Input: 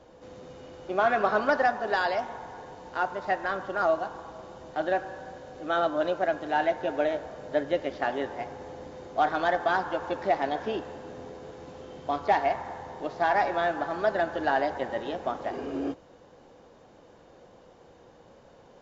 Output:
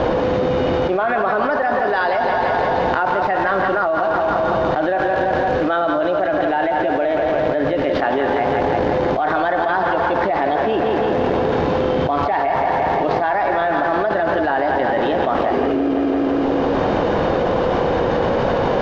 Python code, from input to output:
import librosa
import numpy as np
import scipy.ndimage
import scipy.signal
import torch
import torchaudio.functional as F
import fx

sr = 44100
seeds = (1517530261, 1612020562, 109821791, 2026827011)

p1 = fx.low_shelf(x, sr, hz=380.0, db=-2.5)
p2 = fx.quant_dither(p1, sr, seeds[0], bits=6, dither='none')
p3 = p1 + (p2 * librosa.db_to_amplitude(-11.5))
p4 = fx.air_absorb(p3, sr, metres=260.0)
p5 = fx.echo_feedback(p4, sr, ms=170, feedback_pct=56, wet_db=-10.0)
y = fx.env_flatten(p5, sr, amount_pct=100)